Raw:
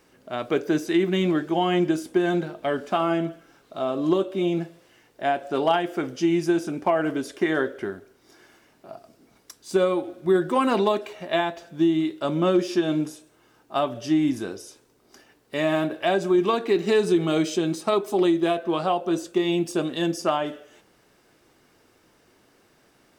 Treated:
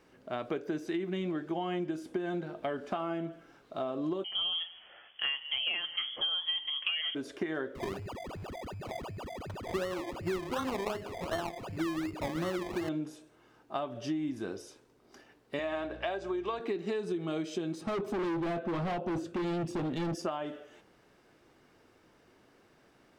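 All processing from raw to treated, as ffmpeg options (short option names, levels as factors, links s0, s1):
-filter_complex "[0:a]asettb=1/sr,asplit=3[s0][s1][s2];[s0]atrim=end=4.244[s3];[s1]atrim=start=4.24:end=7.15,asetpts=PTS-STARTPTS,afade=t=in:d=0.004:c=qsin,afade=t=out:st=2.906:d=0.004:c=qsin,acontrast=68,lowpass=f=3000:t=q:w=0.5098,lowpass=f=3000:t=q:w=0.6013,lowpass=f=3000:t=q:w=0.9,lowpass=f=3000:t=q:w=2.563,afreqshift=-3500[s4];[s2]atrim=start=7.146[s5];[s3][s4]acrossfade=d=0.004:c1=hsin:c2=qsin[s6];[s6][s5]acrossfade=d=0.004:c1=qsin:c2=hsin,asettb=1/sr,asplit=3[s7][s8][s9];[s7]atrim=end=7.754[s10];[s8]atrim=start=7.75:end=12.89,asetpts=PTS-STARTPTS,afade=t=in:d=0.004:c=qsin,afade=t=out:st=5.136:d=0.004:c=qsin,bandreject=f=50:t=h:w=6,bandreject=f=100:t=h:w=6,bandreject=f=150:t=h:w=6,bandreject=f=200:t=h:w=6,bandreject=f=250:t=h:w=6,bandreject=f=300:t=h:w=6,bandreject=f=350:t=h:w=6,bandreject=f=400:t=h:w=6,bandreject=f=450:t=h:w=6,bandreject=f=500:t=h:w=6,aeval=exprs='val(0)+0.0158*sin(2*PI*4800*n/s)':c=same,acrusher=samples=25:mix=1:aa=0.000001:lfo=1:lforange=15:lforate=2.7[s11];[s9]atrim=start=12.886[s12];[s10][s11]acrossfade=d=0.004:c1=hsin:c2=qsin[s13];[s13][s12]acrossfade=d=0.004:c1=qsin:c2=hsin,asettb=1/sr,asplit=3[s14][s15][s16];[s14]atrim=end=15.594[s17];[s15]atrim=start=15.59:end=16.6,asetpts=PTS-STARTPTS,afade=t=in:d=0.004:c=qsin,afade=t=out:st=1.006:d=0.004:c=qsin,highpass=430,lowpass=7200,aeval=exprs='val(0)+0.00501*(sin(2*PI*60*n/s)+sin(2*PI*2*60*n/s)/2+sin(2*PI*3*60*n/s)/3+sin(2*PI*4*60*n/s)/4+sin(2*PI*5*60*n/s)/5)':c=same[s18];[s16]atrim=start=16.596[s19];[s17][s18]acrossfade=d=0.004:c1=hsin:c2=qsin[s20];[s20][s19]acrossfade=d=0.004:c1=qsin:c2=hsin,asettb=1/sr,asplit=3[s21][s22][s23];[s21]atrim=end=17.814[s24];[s22]atrim=start=17.81:end=20.15,asetpts=PTS-STARTPTS,afade=t=in:d=0.004:c=qsin,afade=t=out:st=2.336:d=0.004:c=qsin,highpass=f=77:w=0.5412,highpass=f=77:w=1.3066,bass=f=250:g=13,treble=f=4000:g=-5,volume=17.8,asoftclip=hard,volume=0.0562[s25];[s23]atrim=start=20.146[s26];[s24][s25]acrossfade=d=0.004:c1=hsin:c2=qsin[s27];[s27][s26]acrossfade=d=0.004:c1=qsin:c2=hsin,highshelf=f=5500:g=-11,acompressor=threshold=0.0355:ratio=6,volume=0.75"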